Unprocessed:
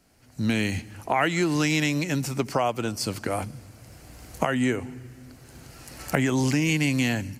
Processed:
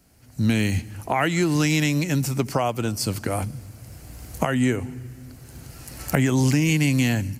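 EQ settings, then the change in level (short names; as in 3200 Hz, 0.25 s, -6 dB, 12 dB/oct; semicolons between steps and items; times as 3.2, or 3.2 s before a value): bell 79 Hz +7.5 dB 2.8 oct; high shelf 9200 Hz +9.5 dB; 0.0 dB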